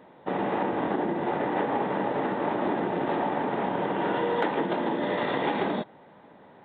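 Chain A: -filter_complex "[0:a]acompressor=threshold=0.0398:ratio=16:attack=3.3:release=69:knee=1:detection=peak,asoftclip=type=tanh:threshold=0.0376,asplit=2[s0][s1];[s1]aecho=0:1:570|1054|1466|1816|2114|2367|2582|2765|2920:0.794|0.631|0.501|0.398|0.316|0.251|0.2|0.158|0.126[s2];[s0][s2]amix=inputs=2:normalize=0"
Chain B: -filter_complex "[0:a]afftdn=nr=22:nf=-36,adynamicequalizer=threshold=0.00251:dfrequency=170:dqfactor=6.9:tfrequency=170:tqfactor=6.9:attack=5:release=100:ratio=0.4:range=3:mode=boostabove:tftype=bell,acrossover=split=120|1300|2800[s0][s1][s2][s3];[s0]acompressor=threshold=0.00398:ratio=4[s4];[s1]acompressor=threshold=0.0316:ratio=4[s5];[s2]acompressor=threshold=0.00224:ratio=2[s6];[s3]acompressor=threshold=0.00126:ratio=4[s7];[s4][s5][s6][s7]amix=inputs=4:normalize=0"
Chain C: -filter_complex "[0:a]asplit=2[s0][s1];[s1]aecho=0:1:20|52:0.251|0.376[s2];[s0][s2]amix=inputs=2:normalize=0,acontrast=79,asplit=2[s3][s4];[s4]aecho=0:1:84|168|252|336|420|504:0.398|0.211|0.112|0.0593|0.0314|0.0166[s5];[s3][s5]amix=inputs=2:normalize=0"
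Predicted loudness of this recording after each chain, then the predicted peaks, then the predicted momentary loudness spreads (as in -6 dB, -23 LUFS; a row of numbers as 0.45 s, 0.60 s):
-31.0 LUFS, -33.0 LUFS, -19.5 LUFS; -19.0 dBFS, -19.0 dBFS, -6.5 dBFS; 3 LU, 1 LU, 3 LU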